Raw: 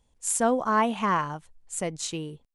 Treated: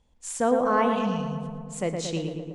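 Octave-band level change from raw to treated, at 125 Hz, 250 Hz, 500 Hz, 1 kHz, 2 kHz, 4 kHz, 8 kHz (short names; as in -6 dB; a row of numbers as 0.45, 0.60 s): +5.0, +2.5, +3.5, -1.5, -2.0, 0.0, -6.5 dB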